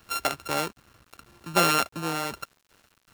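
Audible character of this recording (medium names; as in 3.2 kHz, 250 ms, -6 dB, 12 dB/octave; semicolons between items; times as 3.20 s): a buzz of ramps at a fixed pitch in blocks of 32 samples; tremolo saw down 2.6 Hz, depth 50%; a quantiser's noise floor 10-bit, dither none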